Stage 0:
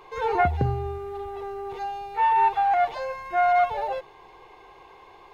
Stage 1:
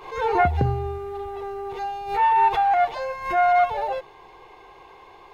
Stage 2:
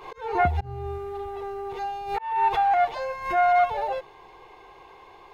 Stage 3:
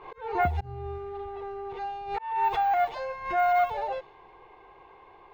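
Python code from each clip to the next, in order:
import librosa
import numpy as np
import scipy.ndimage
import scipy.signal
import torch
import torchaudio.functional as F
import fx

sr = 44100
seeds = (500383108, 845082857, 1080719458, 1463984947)

y1 = fx.pre_swell(x, sr, db_per_s=97.0)
y1 = y1 * 10.0 ** (2.0 / 20.0)
y2 = fx.auto_swell(y1, sr, attack_ms=328.0)
y2 = y2 * 10.0 ** (-1.5 / 20.0)
y3 = (np.kron(scipy.signal.resample_poly(y2, 1, 2), np.eye(2)[0]) * 2)[:len(y2)]
y3 = fx.env_lowpass(y3, sr, base_hz=2300.0, full_db=-14.0)
y3 = y3 * 10.0 ** (-3.5 / 20.0)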